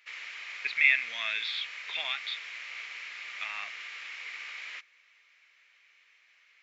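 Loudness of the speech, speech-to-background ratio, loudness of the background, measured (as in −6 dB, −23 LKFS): −29.0 LKFS, 10.5 dB, −39.5 LKFS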